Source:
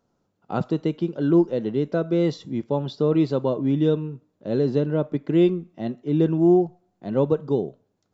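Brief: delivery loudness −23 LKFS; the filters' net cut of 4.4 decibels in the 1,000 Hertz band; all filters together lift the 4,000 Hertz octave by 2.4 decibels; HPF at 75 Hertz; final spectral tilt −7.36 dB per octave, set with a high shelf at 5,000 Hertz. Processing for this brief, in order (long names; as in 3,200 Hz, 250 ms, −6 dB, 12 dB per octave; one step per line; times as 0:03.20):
high-pass filter 75 Hz
parametric band 1,000 Hz −6.5 dB
parametric band 4,000 Hz +5.5 dB
high-shelf EQ 5,000 Hz −6 dB
level +0.5 dB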